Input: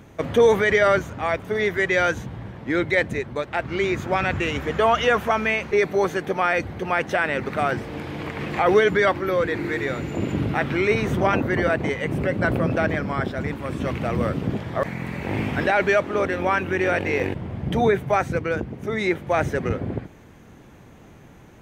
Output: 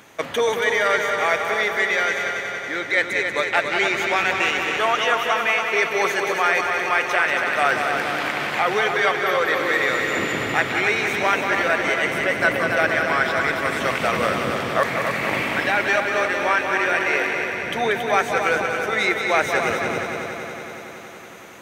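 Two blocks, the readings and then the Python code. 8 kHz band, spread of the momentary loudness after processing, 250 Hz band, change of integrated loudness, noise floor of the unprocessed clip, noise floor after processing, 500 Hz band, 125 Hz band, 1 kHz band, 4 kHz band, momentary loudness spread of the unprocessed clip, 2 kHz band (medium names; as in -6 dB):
+8.5 dB, 5 LU, -5.0 dB, +2.5 dB, -47 dBFS, -35 dBFS, -1.5 dB, -9.5 dB, +3.5 dB, +7.5 dB, 10 LU, +6.0 dB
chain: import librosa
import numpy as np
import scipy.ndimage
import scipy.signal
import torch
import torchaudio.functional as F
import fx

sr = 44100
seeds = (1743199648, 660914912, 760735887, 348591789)

y = fx.highpass(x, sr, hz=1500.0, slope=6)
y = fx.rider(y, sr, range_db=5, speed_s=0.5)
y = fx.echo_heads(y, sr, ms=93, heads='second and third', feedback_pct=70, wet_db=-6.5)
y = F.gain(torch.from_numpy(y), 6.5).numpy()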